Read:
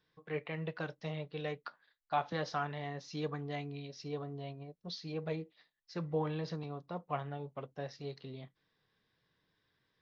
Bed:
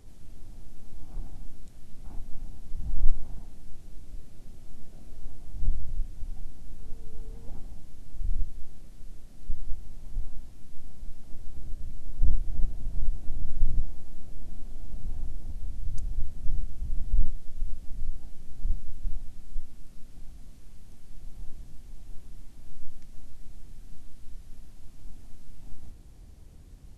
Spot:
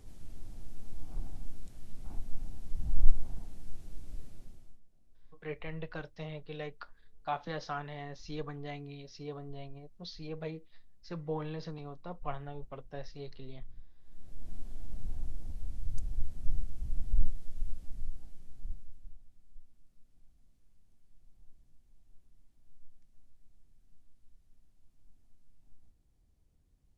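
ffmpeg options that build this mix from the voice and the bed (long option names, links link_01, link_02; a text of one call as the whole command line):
ffmpeg -i stem1.wav -i stem2.wav -filter_complex "[0:a]adelay=5150,volume=-2dB[link_01];[1:a]volume=19dB,afade=type=out:start_time=4.23:duration=0.57:silence=0.0707946,afade=type=in:start_time=14:duration=0.55:silence=0.0944061,afade=type=out:start_time=17.55:duration=1.6:silence=0.149624[link_02];[link_01][link_02]amix=inputs=2:normalize=0" out.wav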